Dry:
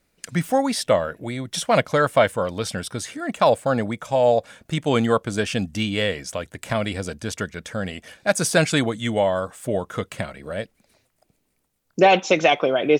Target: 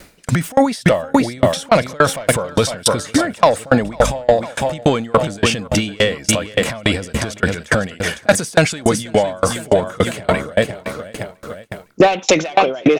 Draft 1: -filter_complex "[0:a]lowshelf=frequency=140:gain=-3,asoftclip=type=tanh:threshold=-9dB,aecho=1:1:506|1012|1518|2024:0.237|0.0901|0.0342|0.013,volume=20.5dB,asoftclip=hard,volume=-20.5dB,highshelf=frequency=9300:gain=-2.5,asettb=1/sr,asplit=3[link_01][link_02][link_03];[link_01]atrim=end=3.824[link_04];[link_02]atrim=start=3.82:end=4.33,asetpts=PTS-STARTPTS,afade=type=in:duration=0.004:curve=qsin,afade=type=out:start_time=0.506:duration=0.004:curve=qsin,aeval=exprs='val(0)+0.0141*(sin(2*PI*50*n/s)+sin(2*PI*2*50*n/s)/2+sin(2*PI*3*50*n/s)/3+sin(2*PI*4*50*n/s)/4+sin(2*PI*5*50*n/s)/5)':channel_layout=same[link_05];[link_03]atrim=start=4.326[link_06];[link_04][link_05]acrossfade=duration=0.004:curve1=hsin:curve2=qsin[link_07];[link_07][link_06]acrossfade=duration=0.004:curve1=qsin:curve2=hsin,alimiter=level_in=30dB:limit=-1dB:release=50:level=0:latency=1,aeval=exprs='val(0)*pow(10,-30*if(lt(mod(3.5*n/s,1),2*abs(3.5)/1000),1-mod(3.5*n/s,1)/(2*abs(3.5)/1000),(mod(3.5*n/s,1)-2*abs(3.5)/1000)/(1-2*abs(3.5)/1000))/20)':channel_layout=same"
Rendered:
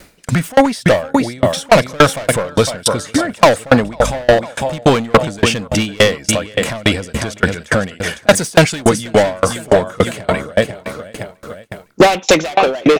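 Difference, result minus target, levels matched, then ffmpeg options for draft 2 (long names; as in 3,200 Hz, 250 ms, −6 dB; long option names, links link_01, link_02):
gain into a clipping stage and back: distortion +21 dB
-filter_complex "[0:a]lowshelf=frequency=140:gain=-3,asoftclip=type=tanh:threshold=-9dB,aecho=1:1:506|1012|1518|2024:0.237|0.0901|0.0342|0.013,volume=11.5dB,asoftclip=hard,volume=-11.5dB,highshelf=frequency=9300:gain=-2.5,asettb=1/sr,asplit=3[link_01][link_02][link_03];[link_01]atrim=end=3.824[link_04];[link_02]atrim=start=3.82:end=4.33,asetpts=PTS-STARTPTS,afade=type=in:duration=0.004:curve=qsin,afade=type=out:start_time=0.506:duration=0.004:curve=qsin,aeval=exprs='val(0)+0.0141*(sin(2*PI*50*n/s)+sin(2*PI*2*50*n/s)/2+sin(2*PI*3*50*n/s)/3+sin(2*PI*4*50*n/s)/4+sin(2*PI*5*50*n/s)/5)':channel_layout=same[link_05];[link_03]atrim=start=4.326[link_06];[link_04][link_05]acrossfade=duration=0.004:curve1=hsin:curve2=qsin[link_07];[link_07][link_06]acrossfade=duration=0.004:curve1=qsin:curve2=hsin,alimiter=level_in=30dB:limit=-1dB:release=50:level=0:latency=1,aeval=exprs='val(0)*pow(10,-30*if(lt(mod(3.5*n/s,1),2*abs(3.5)/1000),1-mod(3.5*n/s,1)/(2*abs(3.5)/1000),(mod(3.5*n/s,1)-2*abs(3.5)/1000)/(1-2*abs(3.5)/1000))/20)':channel_layout=same"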